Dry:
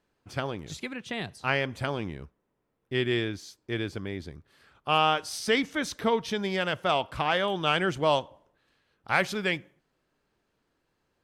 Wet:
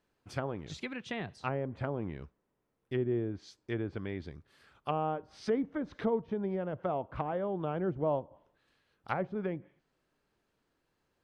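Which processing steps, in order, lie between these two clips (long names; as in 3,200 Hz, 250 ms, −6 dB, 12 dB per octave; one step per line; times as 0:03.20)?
treble cut that deepens with the level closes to 610 Hz, closed at −25 dBFS
level −3 dB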